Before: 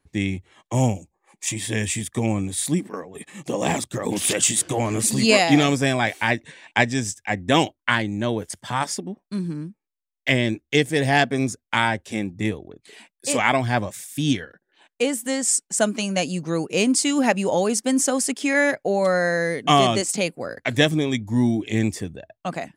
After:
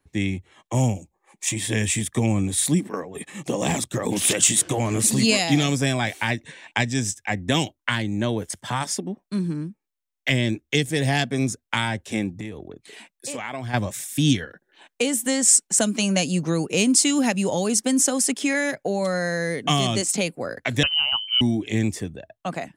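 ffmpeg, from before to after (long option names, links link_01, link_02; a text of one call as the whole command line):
ffmpeg -i in.wav -filter_complex "[0:a]asplit=3[link_01][link_02][link_03];[link_01]afade=type=out:start_time=12.38:duration=0.02[link_04];[link_02]acompressor=threshold=-31dB:ratio=6:attack=3.2:release=140:knee=1:detection=peak,afade=type=in:start_time=12.38:duration=0.02,afade=type=out:start_time=13.73:duration=0.02[link_05];[link_03]afade=type=in:start_time=13.73:duration=0.02[link_06];[link_04][link_05][link_06]amix=inputs=3:normalize=0,asettb=1/sr,asplit=3[link_07][link_08][link_09];[link_07]atrim=end=20.834[link_10];[link_08]atrim=start=20.83:end=21.41,asetpts=PTS-STARTPTS,afade=type=in:duration=0.004:curve=qsin,afade=type=out:start_time=0.576:duration=0.004:curve=qsin,lowpass=frequency=2700:width_type=q:width=0.5098,lowpass=frequency=2700:width_type=q:width=0.6013,lowpass=frequency=2700:width_type=q:width=0.9,lowpass=frequency=2700:width_type=q:width=2.563,afreqshift=-3200[link_11];[link_09]atrim=start=21.406[link_12];[link_10][link_11]acrossfade=duration=0.004:curve1=hsin:curve2=qsin[link_13];[link_13][link_12]acrossfade=duration=0.004:curve1=qsin:curve2=hsin,dynaudnorm=framelen=130:gausssize=31:maxgain=11.5dB,bandreject=frequency=4700:width=19,acrossover=split=220|3000[link_14][link_15][link_16];[link_15]acompressor=threshold=-23dB:ratio=6[link_17];[link_14][link_17][link_16]amix=inputs=3:normalize=0" out.wav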